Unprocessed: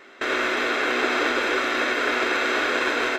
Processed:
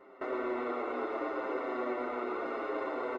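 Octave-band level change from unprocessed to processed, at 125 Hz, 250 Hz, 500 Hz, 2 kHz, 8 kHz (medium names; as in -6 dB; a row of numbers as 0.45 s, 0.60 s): no reading, -8.5 dB, -8.0 dB, -21.5 dB, under -30 dB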